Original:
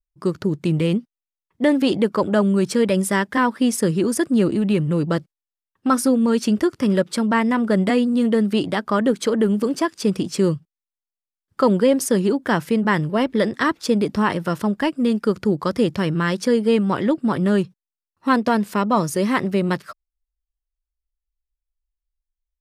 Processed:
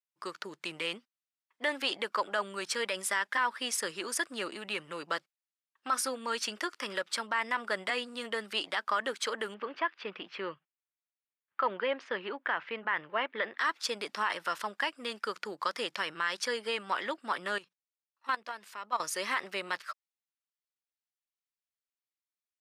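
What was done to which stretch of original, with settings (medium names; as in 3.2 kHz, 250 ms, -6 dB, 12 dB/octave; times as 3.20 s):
9.54–13.59 s: low-pass 2.9 kHz 24 dB/octave
17.58–19.00 s: level held to a coarse grid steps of 16 dB
whole clip: high-pass 1.2 kHz 12 dB/octave; treble shelf 7.7 kHz -11 dB; peak limiter -19.5 dBFS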